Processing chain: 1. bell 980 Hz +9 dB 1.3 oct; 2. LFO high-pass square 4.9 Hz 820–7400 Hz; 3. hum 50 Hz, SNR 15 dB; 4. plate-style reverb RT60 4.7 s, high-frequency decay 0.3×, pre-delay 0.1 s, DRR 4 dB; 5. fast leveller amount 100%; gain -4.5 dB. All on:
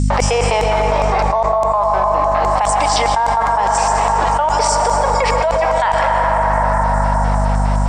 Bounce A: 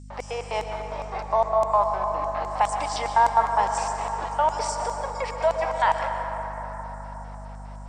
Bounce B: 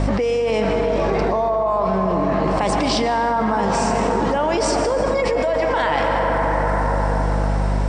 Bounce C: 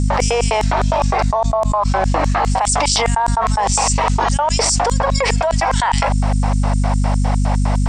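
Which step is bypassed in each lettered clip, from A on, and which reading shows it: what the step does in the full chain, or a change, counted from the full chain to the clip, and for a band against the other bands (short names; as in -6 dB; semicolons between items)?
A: 5, crest factor change +4.0 dB; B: 2, 250 Hz band +8.5 dB; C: 4, momentary loudness spread change +2 LU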